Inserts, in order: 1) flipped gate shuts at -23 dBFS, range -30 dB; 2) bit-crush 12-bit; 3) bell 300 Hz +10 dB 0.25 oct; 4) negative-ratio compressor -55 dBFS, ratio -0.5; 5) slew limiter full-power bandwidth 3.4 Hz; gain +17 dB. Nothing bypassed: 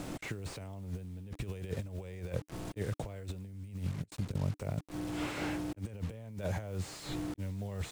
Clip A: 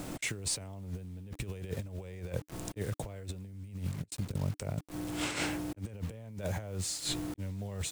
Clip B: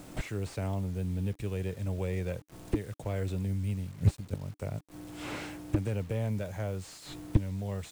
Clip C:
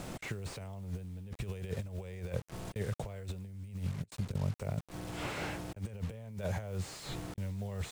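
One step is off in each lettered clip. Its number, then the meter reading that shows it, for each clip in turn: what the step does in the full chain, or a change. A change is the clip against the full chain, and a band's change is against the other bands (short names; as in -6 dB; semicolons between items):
5, distortion -7 dB; 4, crest factor change +6.0 dB; 3, 250 Hz band -3.0 dB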